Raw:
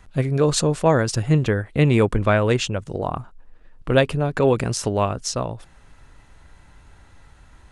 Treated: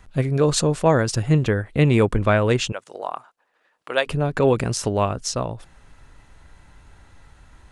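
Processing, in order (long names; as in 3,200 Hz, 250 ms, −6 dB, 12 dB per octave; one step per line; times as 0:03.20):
0:02.72–0:04.06: high-pass filter 660 Hz 12 dB per octave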